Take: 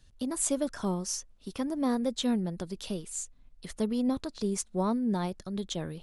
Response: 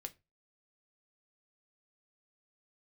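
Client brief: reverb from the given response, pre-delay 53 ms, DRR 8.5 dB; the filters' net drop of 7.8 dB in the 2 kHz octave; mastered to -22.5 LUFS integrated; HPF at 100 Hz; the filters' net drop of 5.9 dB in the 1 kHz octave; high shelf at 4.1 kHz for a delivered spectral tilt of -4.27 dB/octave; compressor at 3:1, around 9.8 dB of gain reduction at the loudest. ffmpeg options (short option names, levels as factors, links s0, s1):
-filter_complex "[0:a]highpass=100,equalizer=f=1000:t=o:g=-6,equalizer=f=2000:t=o:g=-9,highshelf=f=4100:g=3.5,acompressor=threshold=0.0126:ratio=3,asplit=2[s0][s1];[1:a]atrim=start_sample=2205,adelay=53[s2];[s1][s2]afir=irnorm=-1:irlink=0,volume=0.596[s3];[s0][s3]amix=inputs=2:normalize=0,volume=6.68"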